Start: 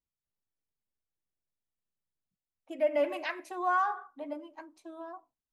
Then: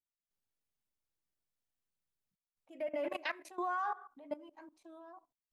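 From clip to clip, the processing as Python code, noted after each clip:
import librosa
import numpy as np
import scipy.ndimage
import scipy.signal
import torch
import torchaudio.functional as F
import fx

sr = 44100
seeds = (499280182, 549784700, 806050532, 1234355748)

y = fx.level_steps(x, sr, step_db=18)
y = y * librosa.db_to_amplitude(1.0)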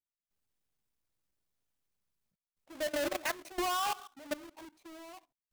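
y = fx.halfwave_hold(x, sr)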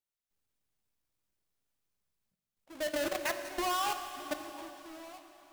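y = fx.rev_plate(x, sr, seeds[0], rt60_s=3.8, hf_ratio=1.0, predelay_ms=0, drr_db=7.0)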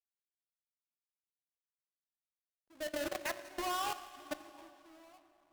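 y = fx.backlash(x, sr, play_db=-55.0)
y = fx.cheby_harmonics(y, sr, harmonics=(7,), levels_db=(-22,), full_scale_db=-22.0)
y = y * librosa.db_to_amplitude(-4.0)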